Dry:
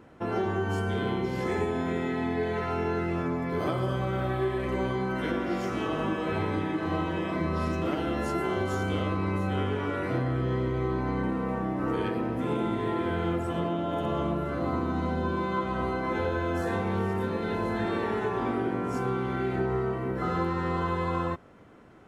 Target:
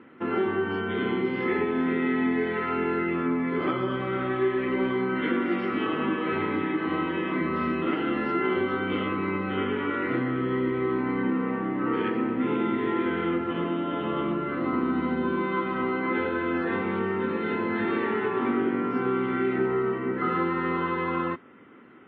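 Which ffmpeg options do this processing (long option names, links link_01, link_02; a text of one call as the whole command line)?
ffmpeg -i in.wav -af "highpass=170,equalizer=frequency=250:width_type=q:width=4:gain=8,equalizer=frequency=370:width_type=q:width=4:gain=5,equalizer=frequency=660:width_type=q:width=4:gain=-8,equalizer=frequency=1300:width_type=q:width=4:gain=6,equalizer=frequency=2000:width_type=q:width=4:gain=8,equalizer=frequency=2900:width_type=q:width=4:gain=5,lowpass=frequency=3400:width=0.5412,lowpass=frequency=3400:width=1.3066" -ar 16000 -c:a libmp3lame -b:a 24k out.mp3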